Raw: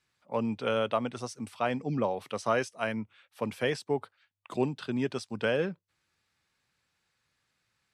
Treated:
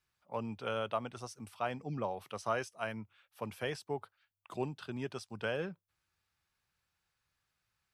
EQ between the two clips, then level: ten-band graphic EQ 125 Hz -6 dB, 250 Hz -11 dB, 500 Hz -8 dB, 1 kHz -4 dB, 2 kHz -8 dB, 4 kHz -7 dB, 8 kHz -8 dB; +2.5 dB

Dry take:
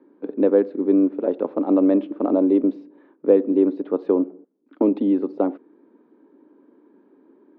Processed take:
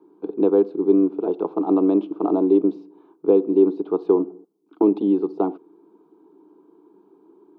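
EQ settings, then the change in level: static phaser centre 370 Hz, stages 8; +4.0 dB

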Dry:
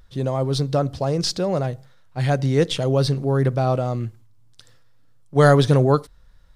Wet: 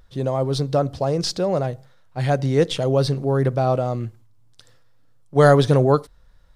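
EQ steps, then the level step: peaking EQ 610 Hz +3.5 dB 1.8 oct; -1.5 dB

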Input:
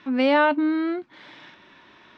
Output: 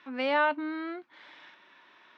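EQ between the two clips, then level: high-pass 1.3 kHz 6 dB/octave; treble shelf 2.6 kHz -9.5 dB; 0.0 dB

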